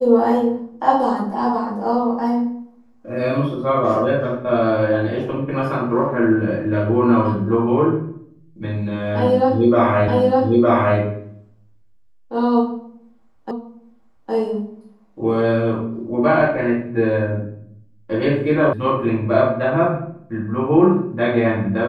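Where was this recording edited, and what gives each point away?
0:10.08: the same again, the last 0.91 s
0:13.51: the same again, the last 0.81 s
0:18.73: cut off before it has died away

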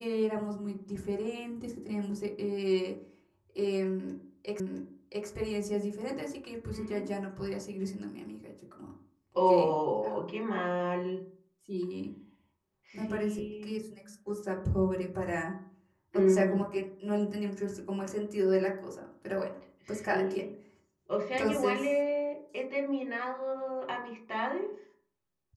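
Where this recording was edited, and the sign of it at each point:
0:04.60: the same again, the last 0.67 s

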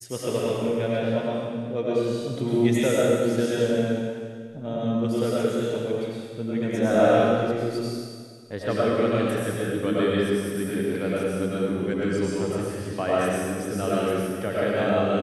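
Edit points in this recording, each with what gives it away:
no edit point found

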